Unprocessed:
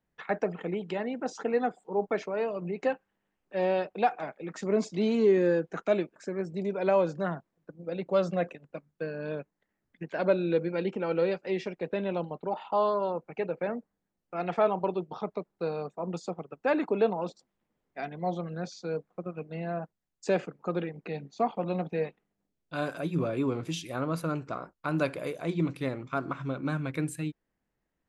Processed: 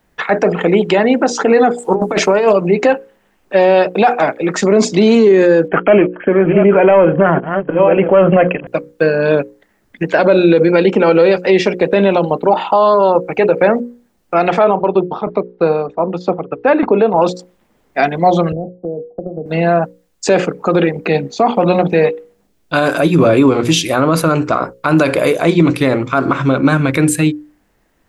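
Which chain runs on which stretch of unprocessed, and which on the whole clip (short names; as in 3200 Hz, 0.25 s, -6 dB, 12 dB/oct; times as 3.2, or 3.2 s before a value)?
1.78–2.53 bell 9800 Hz +14 dB 0.88 oct + negative-ratio compressor -32 dBFS, ratio -0.5 + Doppler distortion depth 0.19 ms
5.68–8.67 reverse delay 0.575 s, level -12.5 dB + sample leveller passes 1 + brick-wall FIR low-pass 3300 Hz
14.64–17.16 tremolo saw down 3.2 Hz, depth 65% + air absorption 280 m
18.52–19.46 compressor 12:1, threshold -38 dBFS + steep low-pass 740 Hz 48 dB/oct + three-band expander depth 70%
whole clip: bell 150 Hz -4.5 dB 0.79 oct; notches 60/120/180/240/300/360/420/480/540 Hz; maximiser +24.5 dB; gain -1 dB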